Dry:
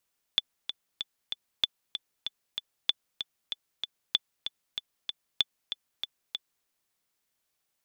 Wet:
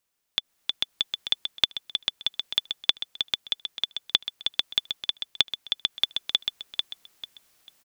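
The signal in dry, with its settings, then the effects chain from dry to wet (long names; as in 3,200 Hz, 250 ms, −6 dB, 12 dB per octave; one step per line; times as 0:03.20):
click track 191 BPM, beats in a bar 4, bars 5, 3,480 Hz, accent 9.5 dB −9.5 dBFS
downward compressor, threshold −25 dBFS
repeating echo 444 ms, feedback 26%, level −6 dB
automatic gain control gain up to 15 dB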